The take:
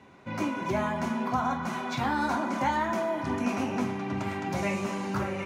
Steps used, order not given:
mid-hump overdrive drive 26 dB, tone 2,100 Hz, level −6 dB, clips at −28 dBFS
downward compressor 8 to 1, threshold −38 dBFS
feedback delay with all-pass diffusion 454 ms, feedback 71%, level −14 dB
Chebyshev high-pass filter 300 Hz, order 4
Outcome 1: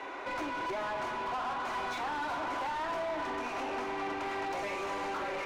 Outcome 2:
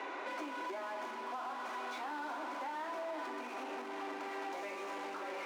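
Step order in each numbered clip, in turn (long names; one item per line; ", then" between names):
downward compressor, then Chebyshev high-pass filter, then mid-hump overdrive, then feedback delay with all-pass diffusion
feedback delay with all-pass diffusion, then mid-hump overdrive, then downward compressor, then Chebyshev high-pass filter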